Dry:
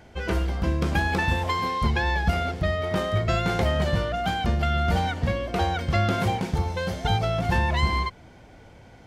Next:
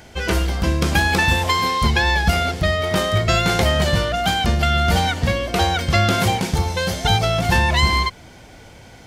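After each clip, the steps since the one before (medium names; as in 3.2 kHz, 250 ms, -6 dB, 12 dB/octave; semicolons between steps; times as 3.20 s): treble shelf 2.9 kHz +11.5 dB; trim +5 dB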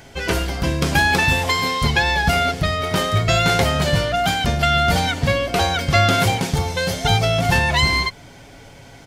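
comb 7.2 ms, depth 41%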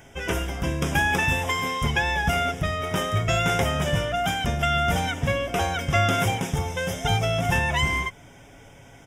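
Butterworth band-stop 4.3 kHz, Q 2.6; trim -5.5 dB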